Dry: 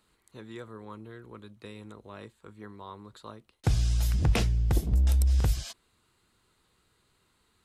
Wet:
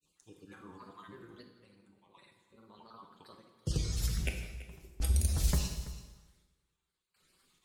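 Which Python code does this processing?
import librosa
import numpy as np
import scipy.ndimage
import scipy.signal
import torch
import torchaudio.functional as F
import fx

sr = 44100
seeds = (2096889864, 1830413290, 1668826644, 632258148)

y = fx.spec_dropout(x, sr, seeds[0], share_pct=32)
y = fx.high_shelf(y, sr, hz=2700.0, db=8.0)
y = y + 0.51 * np.pad(y, (int(5.7 * sr / 1000.0), 0))[:len(y)]
y = fx.granulator(y, sr, seeds[1], grain_ms=100.0, per_s=20.0, spray_ms=100.0, spread_st=3)
y = fx.tremolo_random(y, sr, seeds[2], hz=1.4, depth_pct=95)
y = y + 10.0 ** (-16.5 / 20.0) * np.pad(y, (int(332 * sr / 1000.0), 0))[:len(y)]
y = fx.rev_plate(y, sr, seeds[3], rt60_s=1.2, hf_ratio=0.9, predelay_ms=0, drr_db=3.0)
y = y * librosa.db_to_amplitude(-3.5)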